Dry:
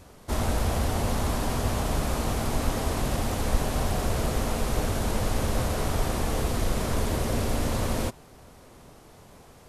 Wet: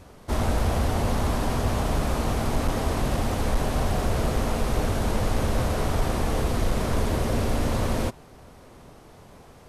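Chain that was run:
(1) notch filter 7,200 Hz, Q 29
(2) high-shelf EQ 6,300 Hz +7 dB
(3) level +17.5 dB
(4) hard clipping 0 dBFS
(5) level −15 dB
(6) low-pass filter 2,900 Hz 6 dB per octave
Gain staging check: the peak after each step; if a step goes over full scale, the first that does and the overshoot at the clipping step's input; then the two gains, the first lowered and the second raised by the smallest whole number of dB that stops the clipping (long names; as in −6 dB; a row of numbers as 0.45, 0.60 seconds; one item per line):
−9.5, −9.5, +8.0, 0.0, −15.0, −15.0 dBFS
step 3, 8.0 dB
step 3 +9.5 dB, step 5 −7 dB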